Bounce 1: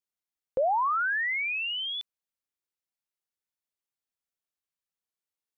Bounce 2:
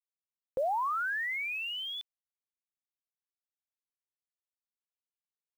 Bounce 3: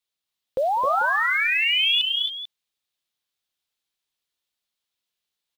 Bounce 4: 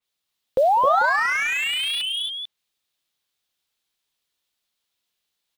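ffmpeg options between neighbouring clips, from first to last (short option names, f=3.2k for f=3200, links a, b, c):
-af "acrusher=bits=8:mix=0:aa=0.000001,volume=-5dB"
-filter_complex "[0:a]equalizer=f=3.6k:w=1.4:g=10,asplit=2[a][b];[b]aecho=0:1:198|264|278|287|442:0.106|0.596|0.335|0.126|0.251[c];[a][c]amix=inputs=2:normalize=0,volume=7.5dB"
-filter_complex "[0:a]acrossover=split=1100[a][b];[b]asoftclip=type=tanh:threshold=-27dB[c];[a][c]amix=inputs=2:normalize=0,adynamicequalizer=threshold=0.00794:dfrequency=3600:dqfactor=0.7:tfrequency=3600:tqfactor=0.7:attack=5:release=100:ratio=0.375:range=2.5:mode=cutabove:tftype=highshelf,volume=5dB"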